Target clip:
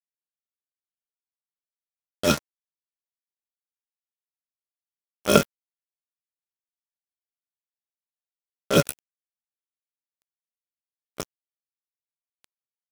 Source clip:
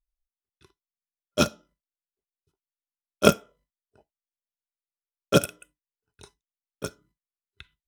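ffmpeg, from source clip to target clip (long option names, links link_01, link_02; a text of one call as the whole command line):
ffmpeg -i in.wav -af "atempo=0.61,acrusher=bits=3:mix=0:aa=0.5" out.wav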